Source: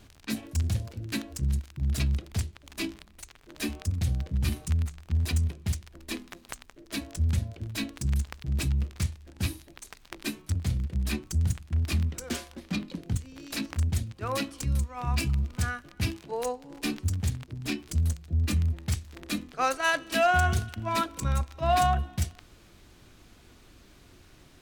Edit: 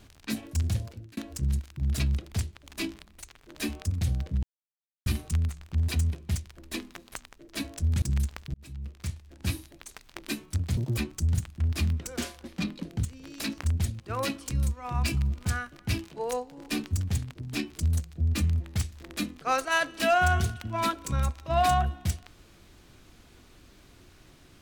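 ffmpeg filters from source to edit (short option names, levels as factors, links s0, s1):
-filter_complex "[0:a]asplit=7[s0][s1][s2][s3][s4][s5][s6];[s0]atrim=end=1.17,asetpts=PTS-STARTPTS,afade=t=out:st=0.84:d=0.33[s7];[s1]atrim=start=1.17:end=4.43,asetpts=PTS-STARTPTS,afade=t=in:d=0.004:c=hsin,afade=t=out:st=3.256:d=0.004:c=hsin,apad=pad_dur=0.63[s8];[s2]atrim=start=4.43:end=7.392,asetpts=PTS-STARTPTS,afade=t=in:d=0.004:c=hsin[s9];[s3]atrim=start=7.978:end=8.5,asetpts=PTS-STARTPTS,afade=t=out:st=0.518:d=0.004:c=hsin[s10];[s4]atrim=start=8.5:end=10.734,asetpts=PTS-STARTPTS,afade=t=in:d=0.96[s11];[s5]atrim=start=10.73:end=11.1,asetpts=PTS-STARTPTS,asetrate=79380,aresample=44100[s12];[s6]atrim=start=11.096[s13];[s7][s8][s9]concat=n=3:v=0:a=1[s14];[s10][s11]concat=n=2:v=0:a=1[s15];[s14][s15]acrossfade=d=0.004:c1=hsin:c2=hsin[s16];[s16][s12]acrossfade=d=0.004:c1=hsin:c2=hsin[s17];[s17][s13]acrossfade=d=0.004:c1=hsin:c2=hsin"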